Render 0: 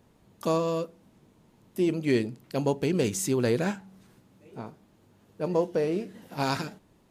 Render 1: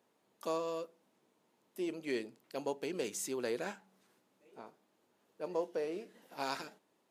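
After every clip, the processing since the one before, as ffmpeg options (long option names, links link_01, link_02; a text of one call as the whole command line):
ffmpeg -i in.wav -af "highpass=370,volume=-8.5dB" out.wav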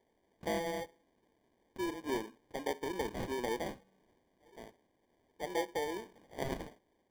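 ffmpeg -i in.wav -af "highpass=frequency=200:width=0.5412,highpass=frequency=200:width=1.3066,acrusher=samples=33:mix=1:aa=0.000001,highshelf=frequency=4000:gain=-6,volume=1dB" out.wav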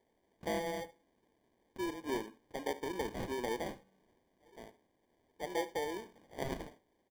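ffmpeg -i in.wav -af "aecho=1:1:74:0.119,volume=-1dB" out.wav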